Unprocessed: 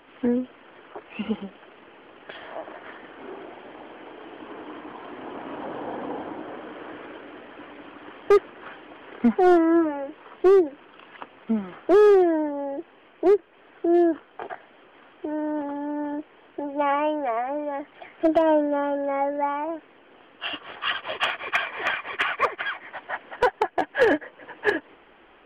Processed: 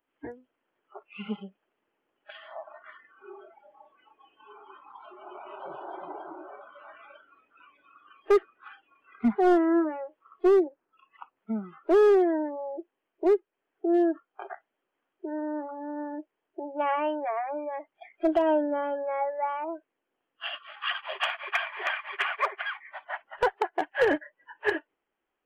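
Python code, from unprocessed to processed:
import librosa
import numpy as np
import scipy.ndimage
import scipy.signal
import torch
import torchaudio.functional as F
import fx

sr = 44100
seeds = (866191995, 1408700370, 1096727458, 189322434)

y = fx.noise_reduce_blind(x, sr, reduce_db=26)
y = fx.lowpass(y, sr, hz=1800.0, slope=12, at=(10.68, 11.36))
y = y * 10.0 ** (-4.0 / 20.0)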